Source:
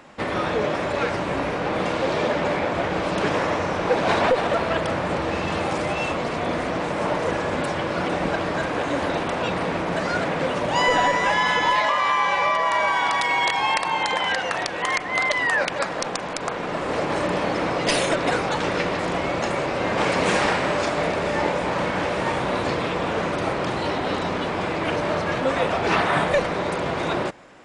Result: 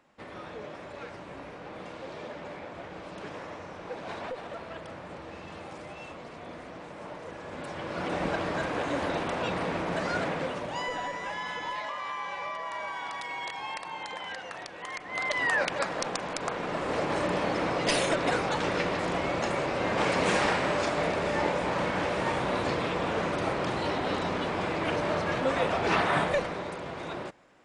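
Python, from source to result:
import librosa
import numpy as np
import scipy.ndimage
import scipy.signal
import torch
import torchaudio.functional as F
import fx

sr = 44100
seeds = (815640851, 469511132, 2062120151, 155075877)

y = fx.gain(x, sr, db=fx.line((7.34, -18.0), (8.19, -6.0), (10.27, -6.0), (10.92, -15.0), (14.93, -15.0), (15.44, -5.0), (26.19, -5.0), (26.79, -12.5)))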